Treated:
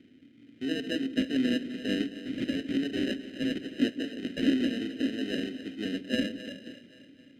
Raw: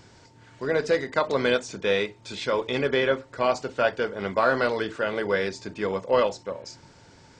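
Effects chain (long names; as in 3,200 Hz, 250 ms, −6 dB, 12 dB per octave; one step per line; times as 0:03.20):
0:02.03–0:04.44: bass and treble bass −15 dB, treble +14 dB
decimation without filtering 39×
formant filter i
echo with a time of its own for lows and highs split 460 Hz, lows 158 ms, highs 263 ms, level −13 dB
level +8.5 dB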